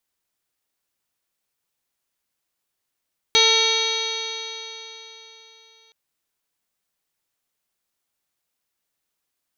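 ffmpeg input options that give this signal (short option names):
-f lavfi -i "aevalsrc='0.0794*pow(10,-3*t/3.68)*sin(2*PI*445.44*t)+0.0531*pow(10,-3*t/3.68)*sin(2*PI*893.55*t)+0.0355*pow(10,-3*t/3.68)*sin(2*PI*1346.96*t)+0.0266*pow(10,-3*t/3.68)*sin(2*PI*1808.26*t)+0.0944*pow(10,-3*t/3.68)*sin(2*PI*2279.95*t)+0.0398*pow(10,-3*t/3.68)*sin(2*PI*2764.45*t)+0.1*pow(10,-3*t/3.68)*sin(2*PI*3264.07*t)+0.15*pow(10,-3*t/3.68)*sin(2*PI*3780.98*t)+0.1*pow(10,-3*t/3.68)*sin(2*PI*4317.23*t)+0.0282*pow(10,-3*t/3.68)*sin(2*PI*4874.73*t)+0.01*pow(10,-3*t/3.68)*sin(2*PI*5455.24*t)+0.075*pow(10,-3*t/3.68)*sin(2*PI*6060.37*t)+0.01*pow(10,-3*t/3.68)*sin(2*PI*6691.62*t)':d=2.57:s=44100"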